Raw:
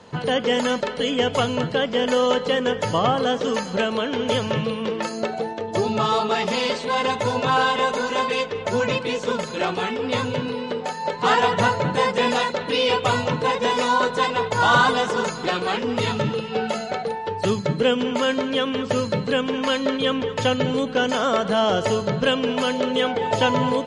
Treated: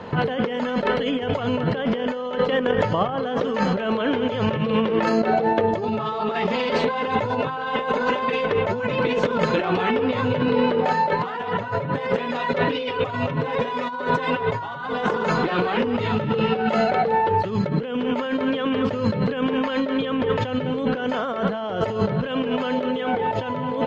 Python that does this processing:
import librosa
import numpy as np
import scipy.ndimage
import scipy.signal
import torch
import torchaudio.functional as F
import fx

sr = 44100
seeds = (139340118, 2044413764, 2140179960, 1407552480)

y = fx.over_compress(x, sr, threshold_db=-25.0, ratio=-0.5, at=(2.45, 3.09))
y = fx.comb(y, sr, ms=7.3, depth=0.65, at=(11.63, 14.81))
y = scipy.signal.sosfilt(scipy.signal.butter(2, 2500.0, 'lowpass', fs=sr, output='sos'), y)
y = fx.over_compress(y, sr, threshold_db=-29.0, ratio=-1.0)
y = y * 10.0 ** (5.5 / 20.0)